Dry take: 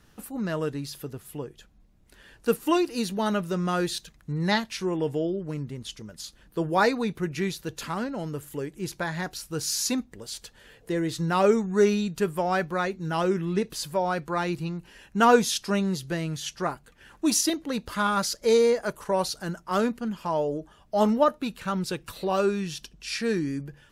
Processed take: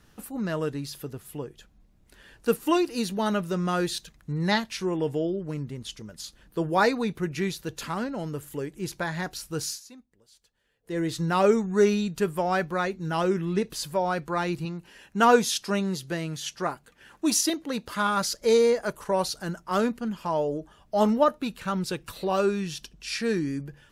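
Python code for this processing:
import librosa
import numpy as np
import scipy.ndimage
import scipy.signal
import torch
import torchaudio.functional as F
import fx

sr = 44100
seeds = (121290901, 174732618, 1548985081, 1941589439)

y = fx.low_shelf(x, sr, hz=84.0, db=-11.5, at=(14.65, 18.21))
y = fx.edit(y, sr, fx.fade_down_up(start_s=9.63, length_s=1.37, db=-21.5, fade_s=0.17), tone=tone)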